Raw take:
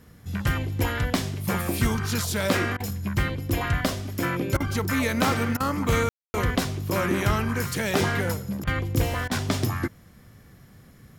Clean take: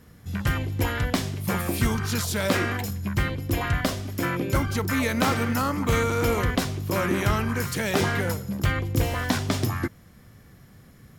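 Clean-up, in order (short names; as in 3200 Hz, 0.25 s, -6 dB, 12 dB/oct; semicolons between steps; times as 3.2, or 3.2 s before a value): room tone fill 6.09–6.34; interpolate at 2.77/4.57/5.57/8.64/9.28, 31 ms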